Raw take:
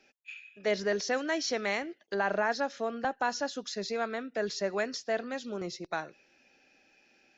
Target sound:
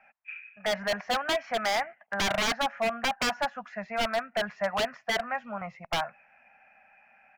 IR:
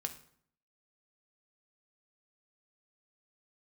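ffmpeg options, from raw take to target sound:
-af "firequalizer=gain_entry='entry(220,0);entry(330,-27);entry(670,13);entry(2400,6);entry(3700,-25)':delay=0.05:min_phase=1,aeval=exprs='0.0891*(abs(mod(val(0)/0.0891+3,4)-2)-1)':channel_layout=same"

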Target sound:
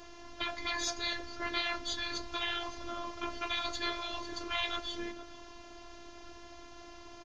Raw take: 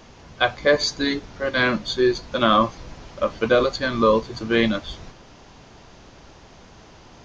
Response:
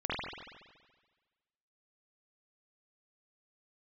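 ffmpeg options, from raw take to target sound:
-filter_complex "[0:a]asplit=2[link_01][link_02];[link_02]adelay=460.6,volume=-19dB,highshelf=frequency=4000:gain=-10.4[link_03];[link_01][link_03]amix=inputs=2:normalize=0,afftfilt=real='re*lt(hypot(re,im),0.158)':imag='im*lt(hypot(re,im),0.158)':win_size=1024:overlap=0.75,afftfilt=real='hypot(re,im)*cos(PI*b)':imag='0':win_size=512:overlap=0.75"

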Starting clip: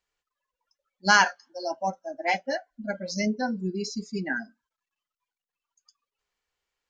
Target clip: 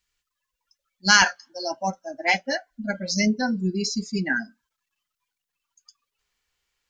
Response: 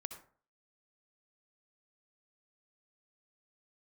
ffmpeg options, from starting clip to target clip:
-af "asetnsamples=nb_out_samples=441:pad=0,asendcmd='1.22 equalizer g -8',equalizer=frequency=580:width_type=o:width=2.4:gain=-15,volume=8.5dB"

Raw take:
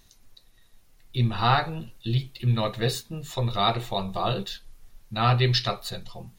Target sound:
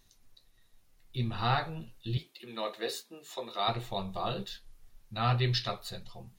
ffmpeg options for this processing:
ffmpeg -i in.wav -filter_complex "[0:a]asettb=1/sr,asplit=3[link_01][link_02][link_03];[link_01]atrim=end=2.174[link_04];[link_02]atrim=start=2.17:end=3.68,asetpts=PTS-STARTPTS,afade=type=in:duration=0.004:curve=qsin,afade=type=out:start_time=1.506:duration=0.004:curve=qsin,highpass=frequency=280:width=0.5412,highpass=frequency=280:width=1.3066[link_05];[link_03]atrim=start=3.676[link_06];[link_04][link_05]acrossfade=duration=0.004:curve1=hsin:curve2=qsin[link_07];[link_07][link_06]acrossfade=duration=0.004:curve1=qsin:curve2=hsin,flanger=delay=7.8:depth=6.1:regen=-64:speed=1.3:shape=triangular,volume=-3dB" out.wav

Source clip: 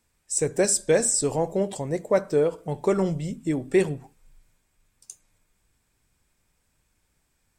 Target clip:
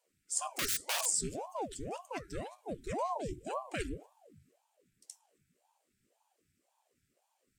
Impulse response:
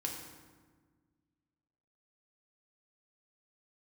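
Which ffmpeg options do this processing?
-filter_complex "[0:a]asettb=1/sr,asplit=3[link_01][link_02][link_03];[link_01]atrim=end=0.484[link_04];[link_02]atrim=start=0.48:end=1.06,asetpts=PTS-STARTPTS,afade=type=in:duration=0.004:curve=qsin,afade=type=out:start_time=0.576:duration=0.004:curve=qsin,aeval=exprs='(mod(8.91*val(0)+1,2)-1)/8.91':channel_layout=same[link_05];[link_03]atrim=start=1.056[link_06];[link_04][link_05]acrossfade=duration=0.004:curve1=hsin:curve2=qsin[link_07];[link_07][link_06]acrossfade=duration=0.004:curve1=qsin:curve2=hsin,afftfilt=real='re*(1-between(b*sr/4096,300,1400))':imag='im*(1-between(b*sr/4096,300,1400))':win_size=4096:overlap=0.75,aeval=exprs='val(0)*sin(2*PI*510*n/s+510*0.8/1.9*sin(2*PI*1.9*n/s))':channel_layout=same,volume=-5dB"

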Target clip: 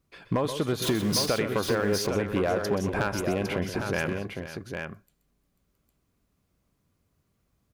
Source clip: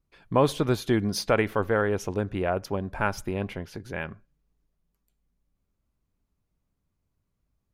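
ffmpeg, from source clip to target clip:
ffmpeg -i in.wav -filter_complex "[0:a]asettb=1/sr,asplit=3[link_01][link_02][link_03];[link_01]atrim=end=0.824[link_04];[link_02]atrim=start=0.82:end=1.26,asetpts=PTS-STARTPTS,afade=type=in:duration=0.004:curve=qsin,afade=type=out:start_time=0.436:duration=0.004:curve=qsin,aeval=exprs='val(0)+0.5*0.0335*sgn(val(0))':channel_layout=same[link_05];[link_03]atrim=start=1.256[link_06];[link_04][link_05]acrossfade=duration=0.004:curve1=hsin:curve2=qsin[link_07];[link_07][link_06]acrossfade=duration=0.004:curve1=qsin:curve2=hsin,highpass=frequency=110:poles=1,bandreject=frequency=890:width=12,acompressor=threshold=-30dB:ratio=16,volume=26.5dB,asoftclip=hard,volume=-26.5dB,asplit=2[link_08][link_09];[link_09]aecho=0:1:126|128|491|806:0.126|0.282|0.211|0.501[link_10];[link_08][link_10]amix=inputs=2:normalize=0,volume=8dB" out.wav

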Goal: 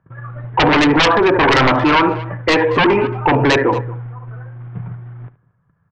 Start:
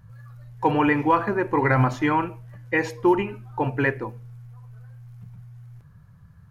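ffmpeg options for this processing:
ffmpeg -i in.wav -filter_complex "[0:a]agate=range=-28dB:threshold=-43dB:ratio=16:detection=peak,acrossover=split=170 2100:gain=0.158 1 0.0891[link_01][link_02][link_03];[link_01][link_02][link_03]amix=inputs=3:normalize=0,atempo=1.1,asplit=2[link_04][link_05];[link_05]aecho=0:1:74:0.168[link_06];[link_04][link_06]amix=inputs=2:normalize=0,aresample=8000,aresample=44100,aeval=exprs='0.398*sin(PI/2*4.47*val(0)/0.398)':channel_layout=same,equalizer=frequency=210:width=5.8:gain=-8,asplit=2[link_07][link_08];[link_08]adelay=227.4,volume=-26dB,highshelf=frequency=4000:gain=-5.12[link_09];[link_07][link_09]amix=inputs=2:normalize=0,alimiter=level_in=14.5dB:limit=-1dB:release=50:level=0:latency=1,volume=-6.5dB" out.wav

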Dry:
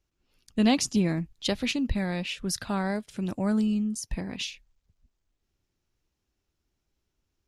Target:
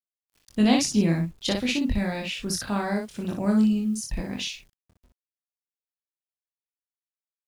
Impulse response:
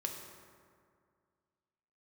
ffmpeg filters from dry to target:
-filter_complex "[0:a]acrusher=bits=9:mix=0:aa=0.000001,asplit=2[link_01][link_02];[link_02]aecho=0:1:24|60:0.631|0.631[link_03];[link_01][link_03]amix=inputs=2:normalize=0"

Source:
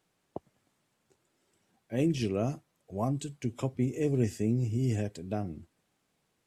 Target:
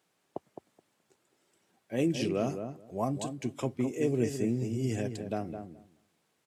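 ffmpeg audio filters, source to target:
ffmpeg -i in.wav -filter_complex "[0:a]highpass=frequency=250:poles=1,asplit=2[link_01][link_02];[link_02]adelay=212,lowpass=frequency=1300:poles=1,volume=-7dB,asplit=2[link_03][link_04];[link_04]adelay=212,lowpass=frequency=1300:poles=1,volume=0.15,asplit=2[link_05][link_06];[link_06]adelay=212,lowpass=frequency=1300:poles=1,volume=0.15[link_07];[link_03][link_05][link_07]amix=inputs=3:normalize=0[link_08];[link_01][link_08]amix=inputs=2:normalize=0,volume=2dB" out.wav

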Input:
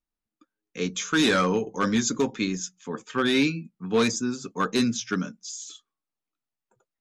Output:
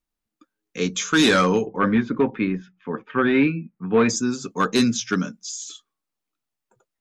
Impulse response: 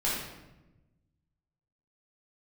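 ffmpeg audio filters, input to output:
-filter_complex "[0:a]asettb=1/sr,asplit=3[link_01][link_02][link_03];[link_01]atrim=end=1.664[link_04];[link_02]atrim=start=1.66:end=4.09,asetpts=PTS-STARTPTS,afade=type=in:duration=0.004:curve=qsin,afade=type=out:start_time=2.426:duration=0.004:curve=qsin,lowpass=frequency=2400:width=0.5412,lowpass=frequency=2400:width=1.3066[link_05];[link_03]atrim=start=4.086[link_06];[link_04][link_05]acrossfade=duration=0.004:curve1=hsin:curve2=qsin[link_07];[link_07][link_06]acrossfade=duration=0.004:curve1=qsin:curve2=hsin,volume=4.5dB"

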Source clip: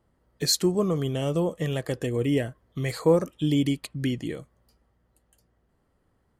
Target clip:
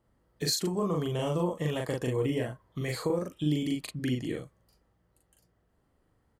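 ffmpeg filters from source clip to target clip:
ffmpeg -i in.wav -filter_complex "[0:a]asettb=1/sr,asplit=3[link_01][link_02][link_03];[link_01]atrim=end=0.674[link_04];[link_02]atrim=start=0.67:end=2.78,asetpts=PTS-STARTPTS,afade=type=in:duration=0.004:curve=qsin,afade=type=out:start_time=2.106:duration=0.004:curve=qsin,equalizer=frequency=970:width=2.8:gain=9[link_05];[link_03]atrim=start=2.776[link_06];[link_04][link_05]acrossfade=duration=0.004:curve1=hsin:curve2=qsin[link_07];[link_07][link_06]acrossfade=duration=0.004:curve1=qsin:curve2=hsin,acompressor=threshold=-23dB:ratio=10,asplit=2[link_08][link_09];[link_09]adelay=40,volume=-2dB[link_10];[link_08][link_10]amix=inputs=2:normalize=0,volume=-3.5dB" out.wav

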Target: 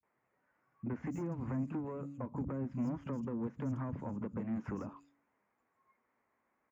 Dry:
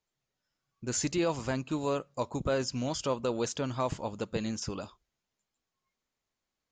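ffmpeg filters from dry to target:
ffmpeg -i in.wav -filter_complex "[0:a]aresample=16000,aresample=44100,acrossover=split=310|4400[link_01][link_02][link_03];[link_02]acompressor=threshold=-43dB:ratio=6[link_04];[link_01][link_04][link_03]amix=inputs=3:normalize=0,bandreject=frequency=141.2:width_type=h:width=4,bandreject=frequency=282.4:width_type=h:width=4,asoftclip=type=tanh:threshold=-34.5dB,highpass=70,highshelf=frequency=2900:width_type=q:width=3:gain=-12,acrossover=split=200|3900[link_05][link_06][link_07];[link_06]adelay=30[link_08];[link_07]adelay=190[link_09];[link_05][link_08][link_09]amix=inputs=3:normalize=0,acrossover=split=220[link_10][link_11];[link_11]acompressor=threshold=-54dB:ratio=6[link_12];[link_10][link_12]amix=inputs=2:normalize=0,equalizer=frequency=250:width_type=o:width=1:gain=10,equalizer=frequency=500:width_type=o:width=1:gain=5,equalizer=frequency=1000:width_type=o:width=1:gain=10,equalizer=frequency=4000:width_type=o:width=1:gain=-3,volume=1.5dB" out.wav

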